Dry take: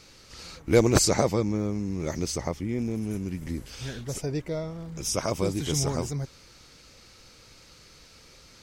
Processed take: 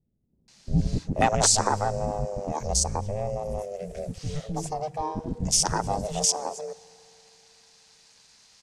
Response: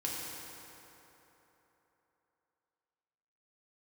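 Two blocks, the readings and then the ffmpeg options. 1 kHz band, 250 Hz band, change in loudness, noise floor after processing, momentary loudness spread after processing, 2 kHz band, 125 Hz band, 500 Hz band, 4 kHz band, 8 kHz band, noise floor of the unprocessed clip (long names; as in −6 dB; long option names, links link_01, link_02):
+9.0 dB, −4.5 dB, +1.5 dB, −67 dBFS, 14 LU, +0.5 dB, −1.0 dB, −2.0 dB, +4.0 dB, +6.0 dB, −53 dBFS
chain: -filter_complex "[0:a]aemphasis=mode=production:type=bsi,afwtdn=0.0316,lowpass=frequency=8900:width=0.5412,lowpass=frequency=8900:width=1.3066,asplit=2[link_01][link_02];[link_02]acompressor=threshold=-34dB:ratio=6,volume=2dB[link_03];[link_01][link_03]amix=inputs=2:normalize=0,aeval=exprs='val(0)*sin(2*PI*310*n/s)':channel_layout=same,acrossover=split=330[link_04][link_05];[link_05]adelay=480[link_06];[link_04][link_06]amix=inputs=2:normalize=0,asplit=2[link_07][link_08];[1:a]atrim=start_sample=2205[link_09];[link_08][link_09]afir=irnorm=-1:irlink=0,volume=-25.5dB[link_10];[link_07][link_10]amix=inputs=2:normalize=0,alimiter=level_in=11.5dB:limit=-1dB:release=50:level=0:latency=1,volume=-7.5dB"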